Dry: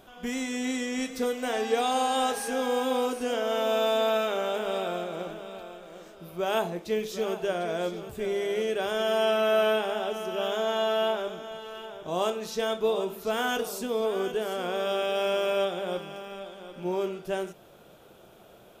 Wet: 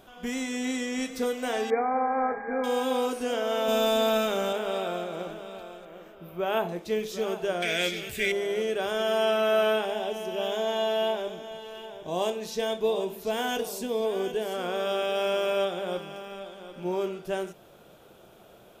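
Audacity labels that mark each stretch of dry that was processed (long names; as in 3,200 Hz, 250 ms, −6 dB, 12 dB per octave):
1.700000	2.640000	linear-phase brick-wall low-pass 2,400 Hz
3.680000	4.530000	bass and treble bass +11 dB, treble +7 dB
5.850000	6.690000	flat-topped bell 6,500 Hz −11 dB
7.620000	8.320000	high shelf with overshoot 1,500 Hz +11 dB, Q 3
9.850000	14.540000	parametric band 1,300 Hz −14 dB 0.23 octaves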